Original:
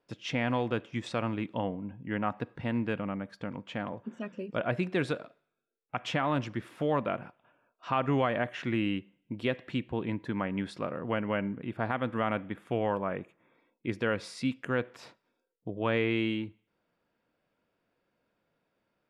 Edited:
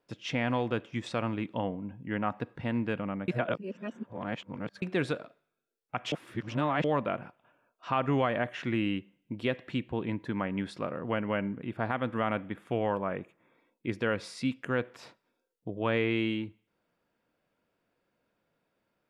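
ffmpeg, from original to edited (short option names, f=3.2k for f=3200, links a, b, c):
-filter_complex "[0:a]asplit=5[a][b][c][d][e];[a]atrim=end=3.282[f];[b]atrim=start=3.278:end=4.822,asetpts=PTS-STARTPTS,areverse[g];[c]atrim=start=4.818:end=6.122[h];[d]atrim=start=6.118:end=6.842,asetpts=PTS-STARTPTS,areverse[i];[e]atrim=start=6.838[j];[f][g]acrossfade=d=0.004:c1=hsin:c2=hsin[k];[k][h]acrossfade=d=0.004:c1=hsin:c2=hsin[l];[l][i]acrossfade=d=0.004:c1=hsin:c2=hsin[m];[m][j]acrossfade=d=0.004:c1=hsin:c2=hsin"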